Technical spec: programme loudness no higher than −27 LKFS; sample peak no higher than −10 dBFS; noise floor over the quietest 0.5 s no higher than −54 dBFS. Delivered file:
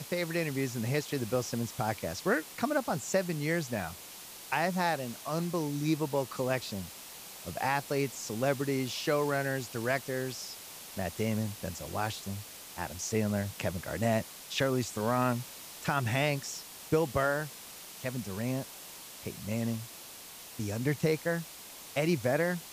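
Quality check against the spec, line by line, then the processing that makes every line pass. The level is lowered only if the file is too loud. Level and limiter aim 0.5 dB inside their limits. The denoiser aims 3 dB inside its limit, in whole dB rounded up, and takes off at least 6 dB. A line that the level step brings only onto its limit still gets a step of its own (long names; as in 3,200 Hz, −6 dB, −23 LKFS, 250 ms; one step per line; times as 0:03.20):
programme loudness −32.5 LKFS: in spec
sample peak −15.5 dBFS: in spec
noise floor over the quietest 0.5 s −48 dBFS: out of spec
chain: broadband denoise 9 dB, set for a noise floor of −48 dBFS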